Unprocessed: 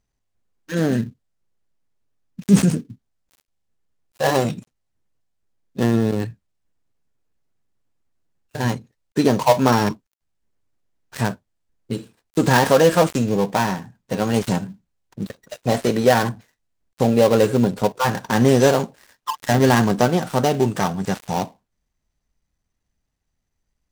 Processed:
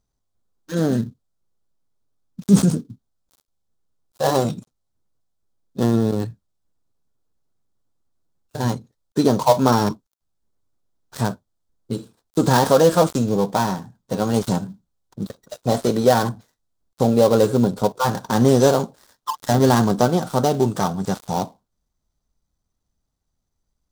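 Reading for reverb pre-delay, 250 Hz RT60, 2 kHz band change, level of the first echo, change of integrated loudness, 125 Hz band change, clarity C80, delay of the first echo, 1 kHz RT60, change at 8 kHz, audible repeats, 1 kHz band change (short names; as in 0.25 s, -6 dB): none, none, -6.0 dB, none, 0.0 dB, 0.0 dB, none, none, none, 0.0 dB, none, 0.0 dB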